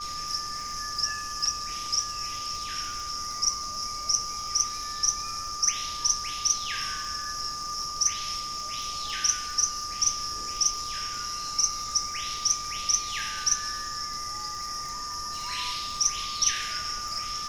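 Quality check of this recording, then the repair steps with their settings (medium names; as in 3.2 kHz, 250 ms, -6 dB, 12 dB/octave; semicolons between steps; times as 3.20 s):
crackle 41 per s -35 dBFS
whine 1.2 kHz -35 dBFS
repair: de-click; band-stop 1.2 kHz, Q 30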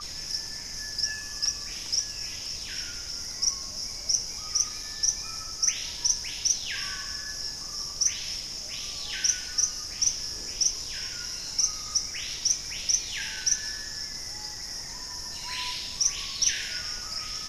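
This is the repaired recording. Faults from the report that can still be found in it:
nothing left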